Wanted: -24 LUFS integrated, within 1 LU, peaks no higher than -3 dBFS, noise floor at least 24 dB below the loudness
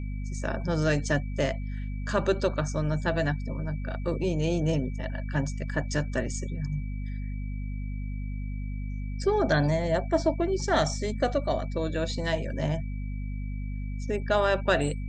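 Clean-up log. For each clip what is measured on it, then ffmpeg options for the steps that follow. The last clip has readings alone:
hum 50 Hz; highest harmonic 250 Hz; hum level -30 dBFS; steady tone 2.3 kHz; tone level -52 dBFS; loudness -29.0 LUFS; peak level -9.5 dBFS; loudness target -24.0 LUFS
-> -af "bandreject=f=50:t=h:w=6,bandreject=f=100:t=h:w=6,bandreject=f=150:t=h:w=6,bandreject=f=200:t=h:w=6,bandreject=f=250:t=h:w=6"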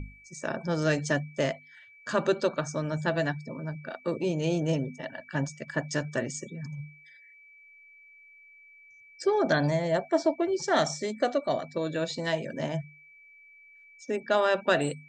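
hum not found; steady tone 2.3 kHz; tone level -52 dBFS
-> -af "bandreject=f=2300:w=30"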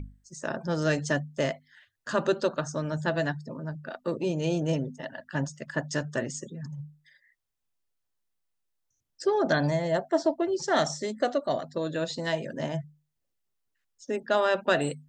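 steady tone not found; loudness -29.5 LUFS; peak level -10.0 dBFS; loudness target -24.0 LUFS
-> -af "volume=1.88"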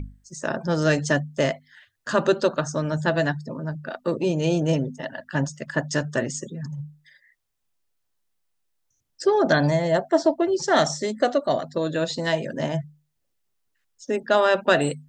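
loudness -24.0 LUFS; peak level -4.5 dBFS; noise floor -74 dBFS

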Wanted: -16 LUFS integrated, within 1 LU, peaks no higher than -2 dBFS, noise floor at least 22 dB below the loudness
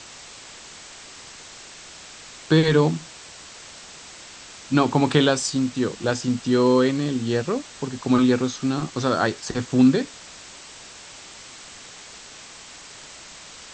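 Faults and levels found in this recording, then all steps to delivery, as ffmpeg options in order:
noise floor -43 dBFS; noise floor target -44 dBFS; loudness -21.5 LUFS; peak level -3.5 dBFS; loudness target -16.0 LUFS
-> -af "afftdn=nr=6:nf=-43"
-af "volume=1.88,alimiter=limit=0.794:level=0:latency=1"

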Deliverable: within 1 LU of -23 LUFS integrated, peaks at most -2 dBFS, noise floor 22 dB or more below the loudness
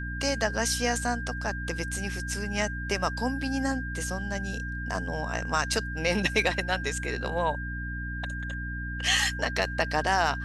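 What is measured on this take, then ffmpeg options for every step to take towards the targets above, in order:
hum 60 Hz; highest harmonic 300 Hz; hum level -33 dBFS; steady tone 1.6 kHz; tone level -36 dBFS; loudness -29.0 LUFS; peak level -9.0 dBFS; loudness target -23.0 LUFS
-> -af "bandreject=f=60:t=h:w=6,bandreject=f=120:t=h:w=6,bandreject=f=180:t=h:w=6,bandreject=f=240:t=h:w=6,bandreject=f=300:t=h:w=6"
-af "bandreject=f=1600:w=30"
-af "volume=2"

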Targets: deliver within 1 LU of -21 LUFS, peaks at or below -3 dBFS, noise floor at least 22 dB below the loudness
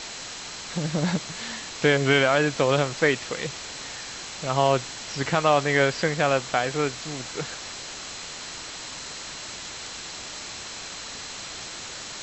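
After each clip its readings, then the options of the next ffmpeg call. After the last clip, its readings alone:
steady tone 4.1 kHz; tone level -45 dBFS; noise floor -38 dBFS; noise floor target -49 dBFS; loudness -26.5 LUFS; peak level -6.0 dBFS; loudness target -21.0 LUFS
-> -af "bandreject=f=4100:w=30"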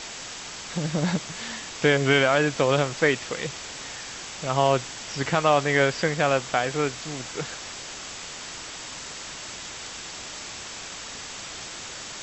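steady tone not found; noise floor -38 dBFS; noise floor target -49 dBFS
-> -af "afftdn=nr=11:nf=-38"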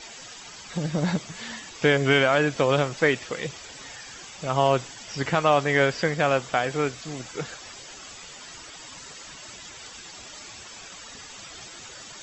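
noise floor -43 dBFS; noise floor target -47 dBFS
-> -af "afftdn=nr=6:nf=-43"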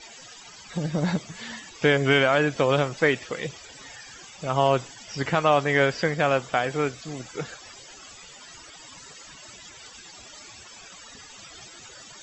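noise floor -46 dBFS; loudness -24.0 LUFS; peak level -6.5 dBFS; loudness target -21.0 LUFS
-> -af "volume=1.41"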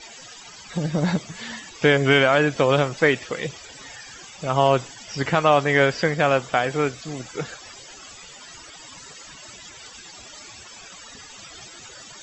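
loudness -21.0 LUFS; peak level -3.5 dBFS; noise floor -43 dBFS

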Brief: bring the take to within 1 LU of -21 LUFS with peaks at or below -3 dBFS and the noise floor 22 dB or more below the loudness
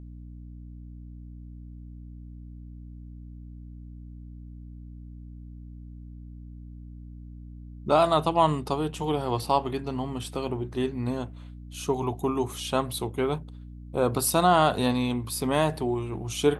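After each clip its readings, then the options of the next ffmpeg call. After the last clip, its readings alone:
hum 60 Hz; highest harmonic 300 Hz; hum level -40 dBFS; loudness -26.5 LUFS; peak level -8.0 dBFS; loudness target -21.0 LUFS
-> -af "bandreject=f=60:t=h:w=4,bandreject=f=120:t=h:w=4,bandreject=f=180:t=h:w=4,bandreject=f=240:t=h:w=4,bandreject=f=300:t=h:w=4"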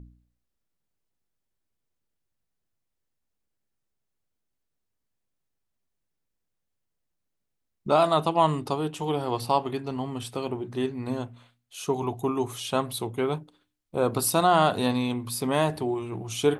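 hum not found; loudness -27.0 LUFS; peak level -8.0 dBFS; loudness target -21.0 LUFS
-> -af "volume=2,alimiter=limit=0.708:level=0:latency=1"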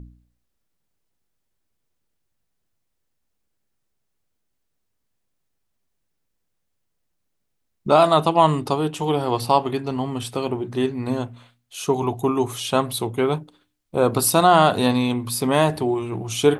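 loudness -21.0 LUFS; peak level -3.0 dBFS; noise floor -74 dBFS

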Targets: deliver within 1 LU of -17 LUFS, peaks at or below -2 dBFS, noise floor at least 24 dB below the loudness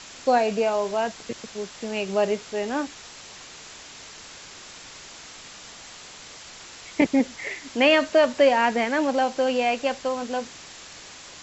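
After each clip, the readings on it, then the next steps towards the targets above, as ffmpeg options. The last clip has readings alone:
noise floor -44 dBFS; noise floor target -48 dBFS; loudness -23.5 LUFS; peak level -7.5 dBFS; loudness target -17.0 LUFS
-> -af "afftdn=nr=6:nf=-44"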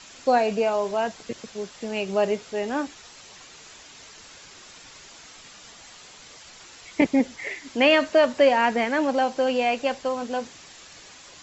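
noise floor -47 dBFS; noise floor target -48 dBFS
-> -af "afftdn=nr=6:nf=-47"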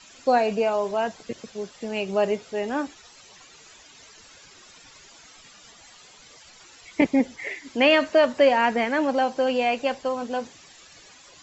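noise floor -51 dBFS; loudness -23.5 LUFS; peak level -7.5 dBFS; loudness target -17.0 LUFS
-> -af "volume=2.11,alimiter=limit=0.794:level=0:latency=1"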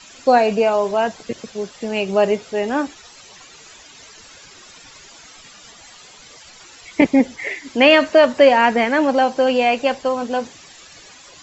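loudness -17.0 LUFS; peak level -2.0 dBFS; noise floor -44 dBFS

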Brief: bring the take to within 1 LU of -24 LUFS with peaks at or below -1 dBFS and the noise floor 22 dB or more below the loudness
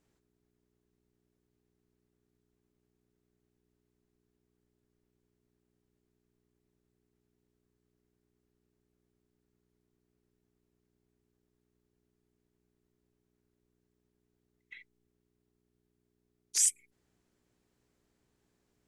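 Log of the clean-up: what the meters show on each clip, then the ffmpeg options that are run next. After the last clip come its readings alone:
hum 60 Hz; highest harmonic 420 Hz; hum level -76 dBFS; loudness -28.0 LUFS; peak level -13.0 dBFS; loudness target -24.0 LUFS
-> -af "bandreject=f=60:t=h:w=4,bandreject=f=120:t=h:w=4,bandreject=f=180:t=h:w=4,bandreject=f=240:t=h:w=4,bandreject=f=300:t=h:w=4,bandreject=f=360:t=h:w=4,bandreject=f=420:t=h:w=4"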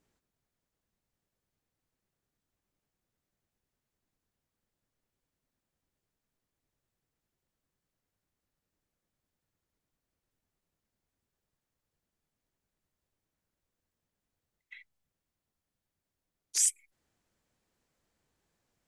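hum not found; loudness -28.0 LUFS; peak level -13.0 dBFS; loudness target -24.0 LUFS
-> -af "volume=1.58"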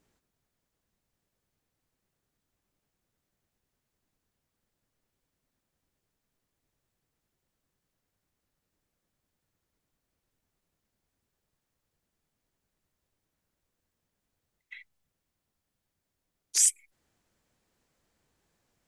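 loudness -24.0 LUFS; peak level -9.0 dBFS; noise floor -84 dBFS

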